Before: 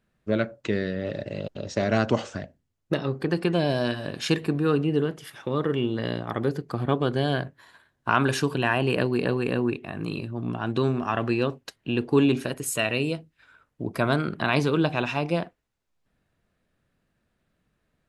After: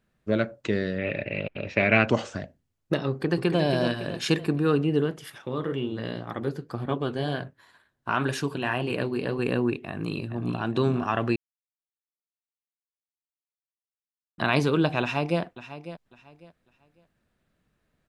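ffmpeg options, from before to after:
-filter_complex "[0:a]asettb=1/sr,asplit=3[a][b][c];[a]atrim=end=0.984[d];[b]atrim=start=0.98:end=2.08,asetpts=PTS-STARTPTS,afade=t=in:d=0.004:c=qsin,afade=t=out:st=1.096:d=0.004:c=qsin,lowpass=f=2.4k:t=q:w=12[e];[c]atrim=start=2.076[f];[d][e]acrossfade=d=0.004:c1=hsin:c2=qsin[g];[g][f]acrossfade=d=0.004:c1=qsin:c2=hsin,asplit=2[h][i];[i]afade=t=in:st=3.09:d=0.01,afade=t=out:st=3.6:d=0.01,aecho=0:1:280|560|840|1120|1400:0.473151|0.212918|0.0958131|0.0431159|0.0194022[j];[h][j]amix=inputs=2:normalize=0,asettb=1/sr,asplit=3[k][l][m];[k]atrim=end=5.384[n];[l]atrim=start=5.38:end=9.39,asetpts=PTS-STARTPTS,afade=t=in:d=0.004:c=qsin,afade=t=out:st=4.006:d=0.004:c=qsin,flanger=delay=3.4:depth=9.6:regen=-57:speed=2:shape=triangular[o];[m]atrim=start=9.386[p];[n][o]acrossfade=d=0.004:c1=hsin:c2=qsin[q];[q][p]acrossfade=d=0.004:c1=qsin:c2=hsin,asplit=2[r][s];[s]afade=t=in:st=9.89:d=0.01,afade=t=out:st=10.63:d=0.01,aecho=0:1:410|820|1230|1640:0.375837|0.112751|0.0338254|0.0101476[t];[r][t]amix=inputs=2:normalize=0,asplit=2[u][v];[v]afade=t=in:st=15.01:d=0.01,afade=t=out:st=15.41:d=0.01,aecho=0:1:550|1100|1650:0.211349|0.0528372|0.0132093[w];[u][w]amix=inputs=2:normalize=0,asplit=3[x][y][z];[x]atrim=end=11.36,asetpts=PTS-STARTPTS,afade=t=out:st=11.356:d=0.004:c=hsin[aa];[y]atrim=start=11.36:end=14.38,asetpts=PTS-STARTPTS,volume=0[ab];[z]atrim=start=14.38,asetpts=PTS-STARTPTS,afade=t=in:d=0.004:c=hsin[ac];[aa][ab][ac]concat=n=3:v=0:a=1"

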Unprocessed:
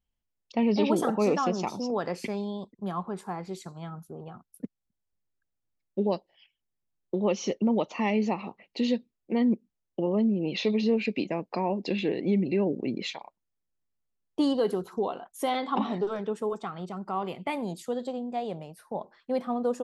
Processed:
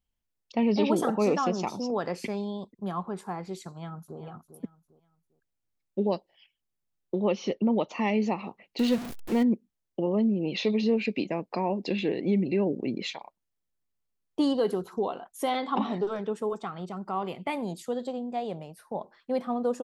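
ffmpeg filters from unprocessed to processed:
-filter_complex "[0:a]asplit=2[a][b];[b]afade=t=in:st=3.68:d=0.01,afade=t=out:st=4.19:d=0.01,aecho=0:1:400|800|1200:0.281838|0.0845515|0.0253654[c];[a][c]amix=inputs=2:normalize=0,asettb=1/sr,asplit=3[d][e][f];[d]atrim=end=7.224[g];[e]atrim=start=7.22:end=7.89,asetpts=PTS-STARTPTS,afade=t=in:d=0.004:c=qsin,afade=t=out:st=0.666:d=0.004:c=qsin,lowpass=f=4.8k:w=0.5412,lowpass=f=4.8k:w=1.3066[h];[f]atrim=start=7.886[i];[g][h]acrossfade=d=0.004:c1=hsin:c2=qsin[j];[j][i]acrossfade=d=0.004:c1=qsin:c2=hsin,asettb=1/sr,asplit=3[k][l][m];[k]atrim=end=8.794[n];[l]atrim=start=8.79:end=9.43,asetpts=PTS-STARTPTS,afade=t=in:d=0.004:c=qsin,afade=t=out:st=0.636:d=0.004:c=qsin,aeval=exprs='val(0)+0.5*0.0282*sgn(val(0))':c=same[o];[m]atrim=start=9.426[p];[n][o]acrossfade=d=0.004:c1=hsin:c2=qsin[q];[q][p]acrossfade=d=0.004:c1=qsin:c2=hsin"

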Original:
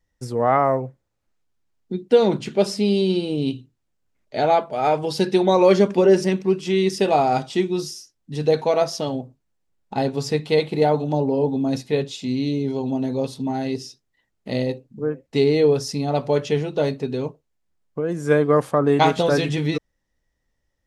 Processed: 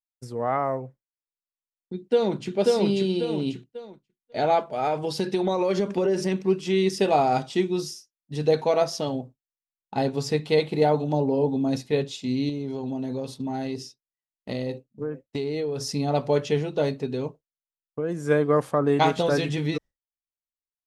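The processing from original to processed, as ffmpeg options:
-filter_complex "[0:a]asplit=2[a][b];[b]afade=t=in:st=1.93:d=0.01,afade=t=out:st=2.55:d=0.01,aecho=0:1:540|1080|1620|2160|2700:0.891251|0.311938|0.109178|0.0382124|0.0133743[c];[a][c]amix=inputs=2:normalize=0,asettb=1/sr,asplit=3[d][e][f];[d]atrim=end=4.704[g];[e]atrim=start=4.7:end=6.48,asetpts=PTS-STARTPTS,afade=t=in:d=0.004:c=qsin,afade=t=out:st=1.776:d=0.004:c=qsin,acompressor=threshold=-16dB:ratio=6:attack=3.2:release=140:knee=1:detection=peak[h];[f]atrim=start=6.476[i];[g][h]acrossfade=d=0.004:c1=hsin:c2=qsin[j];[j][i]acrossfade=d=0.004:c1=qsin:c2=hsin,asettb=1/sr,asplit=3[k][l][m];[k]atrim=end=12.494[n];[l]atrim=start=12.49:end=15.94,asetpts=PTS-STARTPTS,afade=t=in:d=0.004:c=qsin,afade=t=out:st=3.446:d=0.004:c=qsin,acompressor=threshold=-24dB:ratio=6:attack=3.2:release=140:knee=1:detection=peak[o];[m]atrim=start=15.936[p];[n][o]acrossfade=d=0.004:c1=hsin:c2=qsin[q];[q][p]acrossfade=d=0.004:c1=qsin:c2=hsin,agate=range=-33dB:threshold=-32dB:ratio=3:detection=peak,dynaudnorm=f=480:g=11:m=11.5dB,volume=-7.5dB"

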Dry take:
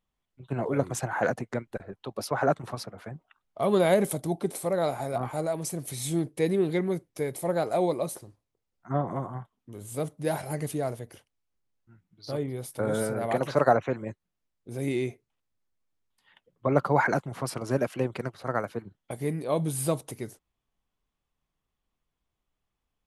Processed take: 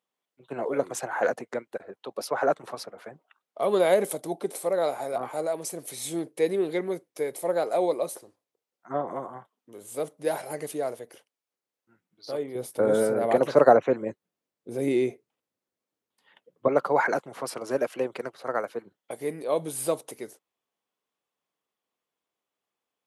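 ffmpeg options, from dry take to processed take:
-filter_complex "[0:a]asettb=1/sr,asplit=3[a][b][c];[a]atrim=end=12.554[d];[b]atrim=start=12.55:end=16.68,asetpts=PTS-STARTPTS,afade=t=in:d=0.004:c=qsin,afade=t=out:st=4.126:d=0.004:c=qsin,lowshelf=f=420:g=11.5[e];[c]atrim=start=16.676[f];[d][e]acrossfade=d=0.004:c1=hsin:c2=qsin[g];[g][f]acrossfade=d=0.004:c1=qsin:c2=hsin,highpass=320,equalizer=f=490:w=2.7:g=4"

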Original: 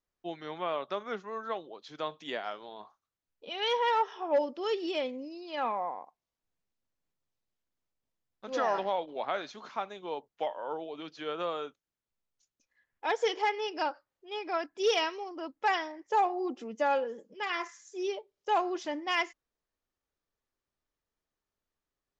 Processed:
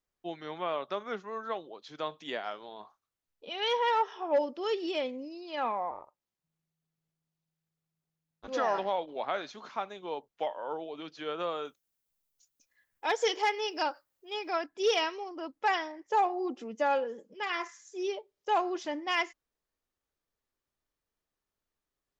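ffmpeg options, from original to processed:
-filter_complex "[0:a]asettb=1/sr,asplit=3[a][b][c];[a]atrim=end=5.914[d];[b]atrim=start=5.91:end=8.48,asetpts=PTS-STARTPTS,afade=t=in:d=0.004:c=qsin,afade=t=out:st=2.566:d=0.004:c=qsin,aeval=exprs='val(0)*sin(2*PI*160*n/s)':c=same[e];[c]atrim=start=8.476[f];[d][e]acrossfade=d=0.004:c1=hsin:c2=qsin[g];[g][f]acrossfade=d=0.004:c1=qsin:c2=hsin,asettb=1/sr,asplit=3[h][i][j];[h]atrim=end=11.654[k];[i]atrim=start=11.65:end=14.59,asetpts=PTS-STARTPTS,afade=t=in:d=0.004:c=qsin,afade=t=out:st=2.936:d=0.004:c=qsin,aemphasis=mode=production:type=50kf[l];[j]atrim=start=14.586[m];[k][l]acrossfade=d=0.004:c1=hsin:c2=qsin[n];[n][m]acrossfade=d=0.004:c1=qsin:c2=hsin"

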